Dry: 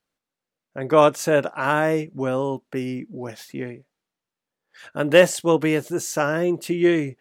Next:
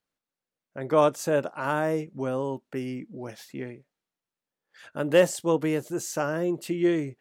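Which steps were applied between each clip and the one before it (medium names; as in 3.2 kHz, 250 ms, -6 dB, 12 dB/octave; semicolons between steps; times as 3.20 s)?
dynamic bell 2.3 kHz, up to -5 dB, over -36 dBFS, Q 0.96; trim -5 dB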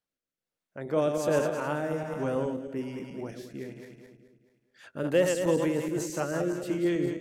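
backward echo that repeats 107 ms, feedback 67%, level -6 dB; rotary cabinet horn 1.2 Hz, later 5.5 Hz, at 4.22 s; trim -1.5 dB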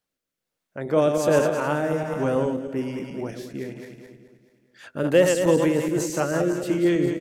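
feedback delay 523 ms, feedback 31%, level -24 dB; trim +6.5 dB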